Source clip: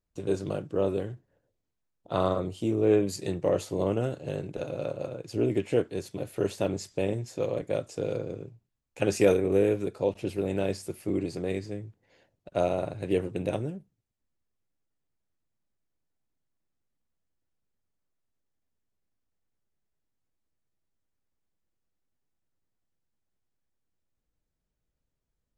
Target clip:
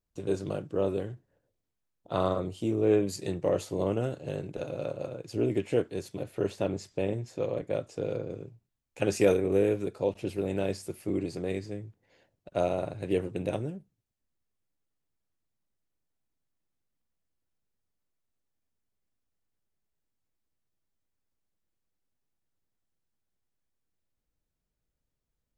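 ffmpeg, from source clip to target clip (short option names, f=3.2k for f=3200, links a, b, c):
-filter_complex "[0:a]asettb=1/sr,asplit=3[a][b][c];[a]atrim=end=6.234[d];[b]atrim=start=6.23:end=8.31,asetpts=PTS-STARTPTS,afade=t=in:d=0.004:c=qsin,afade=t=out:st=2.076:d=0.004:c=qsin,highshelf=f=5.7k:g=-8.5[e];[c]atrim=start=8.306[f];[d][e]acrossfade=d=0.004:c1=hsin:c2=qsin[g];[g][f]acrossfade=d=0.004:c1=qsin:c2=hsin,volume=-1.5dB"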